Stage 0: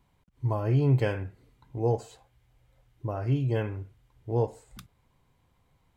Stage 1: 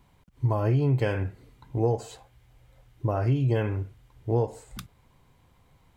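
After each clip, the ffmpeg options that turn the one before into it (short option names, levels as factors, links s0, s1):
-af "acompressor=threshold=0.0447:ratio=6,volume=2.24"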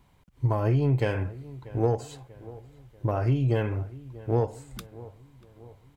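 -filter_complex "[0:a]aeval=exprs='0.251*(cos(1*acos(clip(val(0)/0.251,-1,1)))-cos(1*PI/2))+0.0141*(cos(3*acos(clip(val(0)/0.251,-1,1)))-cos(3*PI/2))+0.00282*(cos(8*acos(clip(val(0)/0.251,-1,1)))-cos(8*PI/2))':c=same,asplit=2[s0][s1];[s1]adelay=639,lowpass=f=1700:p=1,volume=0.119,asplit=2[s2][s3];[s3]adelay=639,lowpass=f=1700:p=1,volume=0.53,asplit=2[s4][s5];[s5]adelay=639,lowpass=f=1700:p=1,volume=0.53,asplit=2[s6][s7];[s7]adelay=639,lowpass=f=1700:p=1,volume=0.53[s8];[s0][s2][s4][s6][s8]amix=inputs=5:normalize=0,volume=1.12"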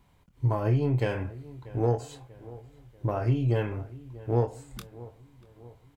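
-filter_complex "[0:a]asplit=2[s0][s1];[s1]adelay=25,volume=0.398[s2];[s0][s2]amix=inputs=2:normalize=0,volume=0.794"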